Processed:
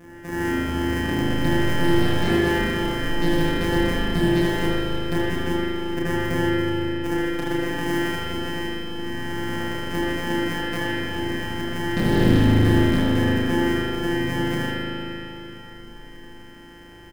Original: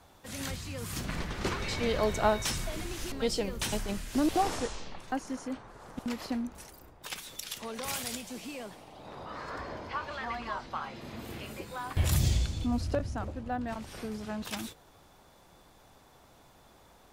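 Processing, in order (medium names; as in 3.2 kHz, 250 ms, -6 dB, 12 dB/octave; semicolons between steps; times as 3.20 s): sorted samples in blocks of 256 samples; peaking EQ 4.1 kHz -14.5 dB 0.31 oct; hum notches 60/120/180 Hz; in parallel at 0 dB: compression, threshold -41 dBFS, peak gain reduction 19 dB; on the sum: wavefolder -22 dBFS; small resonant body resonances 270/1700 Hz, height 13 dB, ringing for 20 ms; on a send: reverse bouncing-ball echo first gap 30 ms, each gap 1.6×, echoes 5; on the sum: spring tank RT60 3 s, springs 38 ms, chirp 80 ms, DRR -7.5 dB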